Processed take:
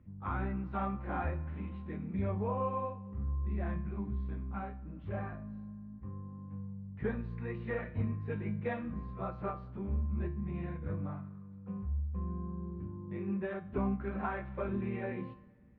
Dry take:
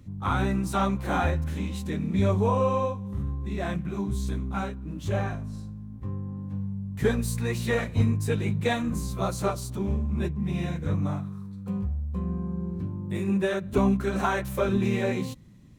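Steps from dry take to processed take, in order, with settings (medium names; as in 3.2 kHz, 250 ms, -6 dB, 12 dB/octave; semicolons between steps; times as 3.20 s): inverse Chebyshev low-pass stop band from 9 kHz, stop band 70 dB; feedback comb 70 Hz, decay 0.43 s, harmonics odd, mix 70%; reverberation RT60 2.2 s, pre-delay 3 ms, DRR 20 dB; trim -2.5 dB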